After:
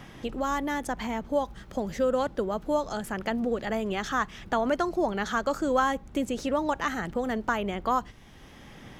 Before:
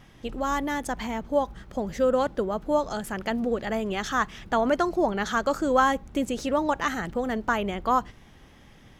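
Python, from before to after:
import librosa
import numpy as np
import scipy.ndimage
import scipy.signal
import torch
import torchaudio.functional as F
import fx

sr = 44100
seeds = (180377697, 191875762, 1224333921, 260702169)

y = fx.band_squash(x, sr, depth_pct=40)
y = y * 10.0 ** (-2.5 / 20.0)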